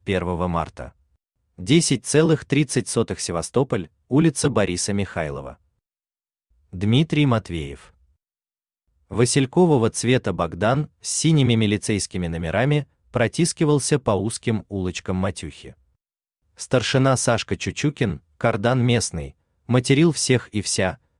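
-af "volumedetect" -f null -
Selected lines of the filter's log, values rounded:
mean_volume: -21.9 dB
max_volume: -4.5 dB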